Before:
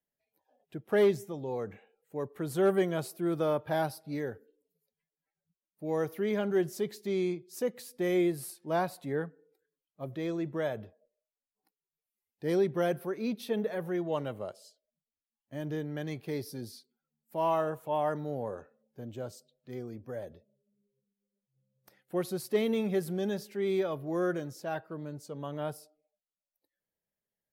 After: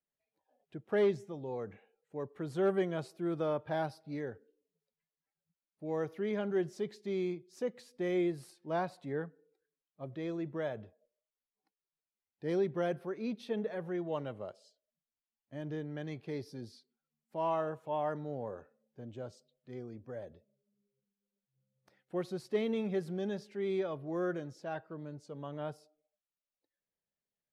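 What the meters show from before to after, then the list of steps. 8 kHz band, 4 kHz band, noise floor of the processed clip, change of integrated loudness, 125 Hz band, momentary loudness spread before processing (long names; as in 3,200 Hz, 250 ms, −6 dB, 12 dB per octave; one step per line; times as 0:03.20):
below −10 dB, −6.0 dB, below −85 dBFS, −4.0 dB, −4.0 dB, 14 LU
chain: high-frequency loss of the air 81 metres
level −4 dB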